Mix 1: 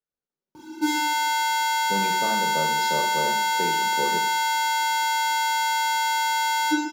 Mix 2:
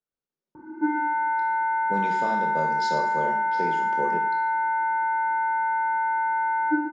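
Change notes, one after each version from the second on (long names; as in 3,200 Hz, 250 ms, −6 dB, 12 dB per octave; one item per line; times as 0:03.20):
background: add Butterworth low-pass 1,800 Hz 48 dB per octave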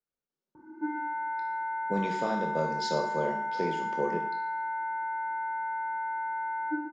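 background −8.5 dB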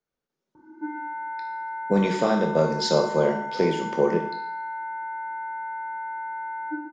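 speech +9.5 dB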